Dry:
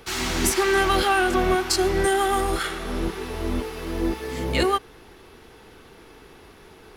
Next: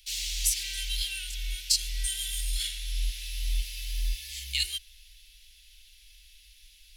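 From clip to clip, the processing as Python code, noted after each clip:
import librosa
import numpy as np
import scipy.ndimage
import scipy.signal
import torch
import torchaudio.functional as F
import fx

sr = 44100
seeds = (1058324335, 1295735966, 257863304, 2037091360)

y = scipy.signal.sosfilt(scipy.signal.cheby2(4, 50, [110.0, 1200.0], 'bandstop', fs=sr, output='sos'), x)
y = fx.rider(y, sr, range_db=5, speed_s=2.0)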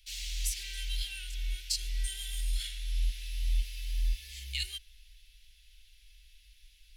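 y = fx.high_shelf(x, sr, hz=2200.0, db=-9.5)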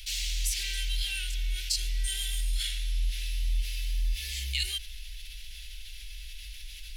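y = fx.env_flatten(x, sr, amount_pct=50)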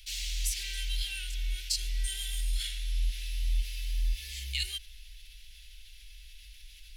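y = fx.upward_expand(x, sr, threshold_db=-41.0, expansion=1.5)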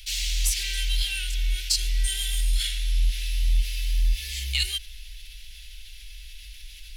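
y = 10.0 ** (-18.0 / 20.0) * np.tanh(x / 10.0 ** (-18.0 / 20.0))
y = y * librosa.db_to_amplitude(8.0)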